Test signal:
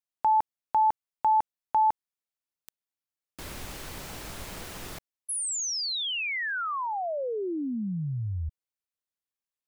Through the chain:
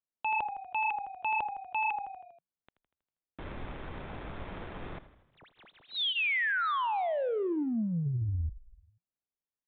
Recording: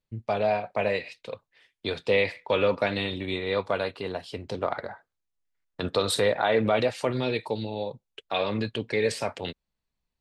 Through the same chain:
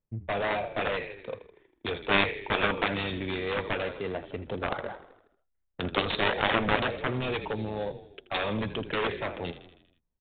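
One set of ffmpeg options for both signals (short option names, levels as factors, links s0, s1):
-filter_complex "[0:a]bandreject=f=2900:w=16,adynamicsmooth=sensitivity=5:basefreq=1000,crystalizer=i=3:c=0,asplit=2[s0][s1];[s1]asplit=6[s2][s3][s4][s5][s6][s7];[s2]adelay=80,afreqshift=-31,volume=0.178[s8];[s3]adelay=160,afreqshift=-62,volume=0.104[s9];[s4]adelay=240,afreqshift=-93,volume=0.0596[s10];[s5]adelay=320,afreqshift=-124,volume=0.0347[s11];[s6]adelay=400,afreqshift=-155,volume=0.0202[s12];[s7]adelay=480,afreqshift=-186,volume=0.0116[s13];[s8][s9][s10][s11][s12][s13]amix=inputs=6:normalize=0[s14];[s0][s14]amix=inputs=2:normalize=0,aeval=exprs='0.473*(cos(1*acos(clip(val(0)/0.473,-1,1)))-cos(1*PI/2))+0.15*(cos(7*acos(clip(val(0)/0.473,-1,1)))-cos(7*PI/2))':c=same,aresample=8000,aresample=44100,volume=0.891"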